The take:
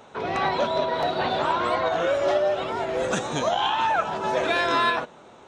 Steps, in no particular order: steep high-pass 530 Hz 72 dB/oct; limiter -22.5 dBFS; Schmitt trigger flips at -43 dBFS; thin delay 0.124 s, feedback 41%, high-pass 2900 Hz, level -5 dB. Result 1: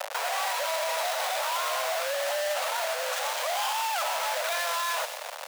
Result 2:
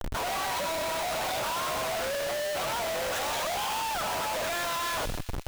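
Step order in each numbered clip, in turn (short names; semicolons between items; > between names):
Schmitt trigger > thin delay > limiter > steep high-pass; steep high-pass > limiter > Schmitt trigger > thin delay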